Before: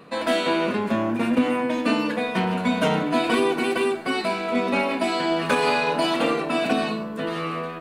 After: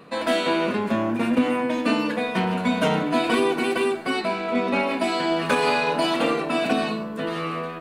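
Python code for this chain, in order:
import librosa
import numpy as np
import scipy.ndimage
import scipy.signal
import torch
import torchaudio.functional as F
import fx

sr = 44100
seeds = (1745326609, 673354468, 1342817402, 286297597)

y = fx.high_shelf(x, sr, hz=fx.line((4.19, 4900.0), (4.86, 8300.0)), db=-8.5, at=(4.19, 4.86), fade=0.02)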